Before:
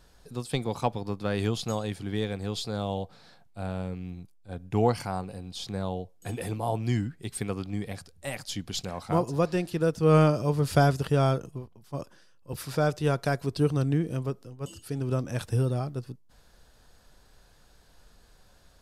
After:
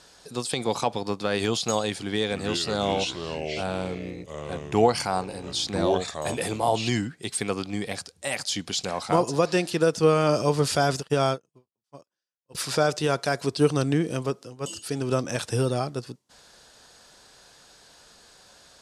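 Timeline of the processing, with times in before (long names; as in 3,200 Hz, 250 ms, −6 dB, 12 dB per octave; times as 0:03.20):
0:02.00–0:06.89: delay with pitch and tempo change per echo 298 ms, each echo −4 semitones, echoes 2, each echo −6 dB
0:11.00–0:12.55: expander for the loud parts 2.5 to 1, over −46 dBFS
whole clip: meter weighting curve ITU-R 468; brickwall limiter −19 dBFS; tilt shelving filter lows +8 dB, about 910 Hz; level +8.5 dB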